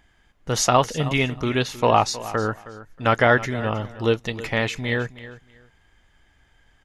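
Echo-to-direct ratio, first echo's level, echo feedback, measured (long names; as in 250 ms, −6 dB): −16.0 dB, −16.0 dB, 20%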